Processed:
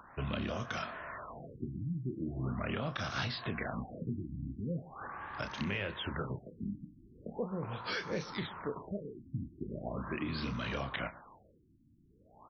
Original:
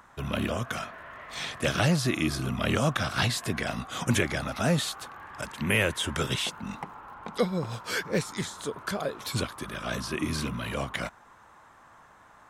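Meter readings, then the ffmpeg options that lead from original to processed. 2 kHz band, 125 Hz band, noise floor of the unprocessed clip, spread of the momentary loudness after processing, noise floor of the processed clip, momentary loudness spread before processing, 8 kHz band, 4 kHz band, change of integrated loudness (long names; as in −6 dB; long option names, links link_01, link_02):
−10.0 dB, −8.5 dB, −55 dBFS, 8 LU, −65 dBFS, 13 LU, −23.0 dB, −11.5 dB, −9.5 dB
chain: -filter_complex "[0:a]asplit=2[link_01][link_02];[link_02]alimiter=limit=-22dB:level=0:latency=1,volume=-2dB[link_03];[link_01][link_03]amix=inputs=2:normalize=0,acompressor=threshold=-28dB:ratio=6,asplit=2[link_04][link_05];[link_05]adelay=30,volume=-9dB[link_06];[link_04][link_06]amix=inputs=2:normalize=0,asplit=2[link_07][link_08];[link_08]adelay=122.4,volume=-19dB,highshelf=frequency=4000:gain=-2.76[link_09];[link_07][link_09]amix=inputs=2:normalize=0,afftfilt=real='re*lt(b*sr/1024,330*pow(6700/330,0.5+0.5*sin(2*PI*0.4*pts/sr)))':imag='im*lt(b*sr/1024,330*pow(6700/330,0.5+0.5*sin(2*PI*0.4*pts/sr)))':win_size=1024:overlap=0.75,volume=-5.5dB"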